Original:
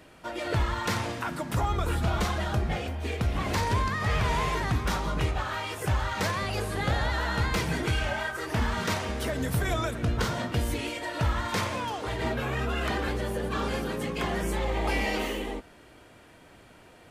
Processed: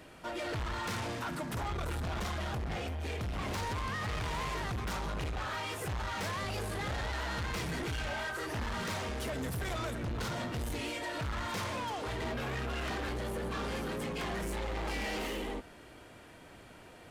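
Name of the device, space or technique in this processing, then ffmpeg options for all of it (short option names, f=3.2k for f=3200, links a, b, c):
saturation between pre-emphasis and de-emphasis: -af "highshelf=f=11k:g=7.5,asoftclip=type=tanh:threshold=-33.5dB,highshelf=f=11k:g=-7.5"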